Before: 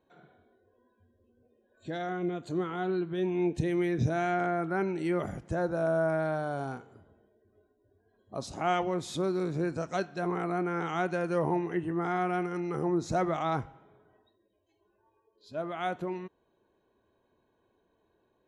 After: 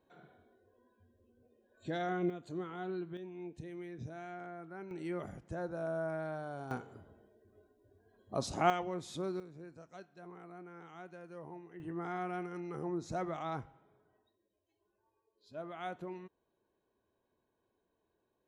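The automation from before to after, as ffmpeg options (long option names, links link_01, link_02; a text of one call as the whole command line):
ffmpeg -i in.wav -af "asetnsamples=nb_out_samples=441:pad=0,asendcmd='2.3 volume volume -9dB;3.17 volume volume -17dB;4.91 volume volume -9.5dB;6.71 volume volume 1.5dB;8.7 volume volume -8dB;9.4 volume volume -20dB;11.8 volume volume -9dB',volume=-1.5dB" out.wav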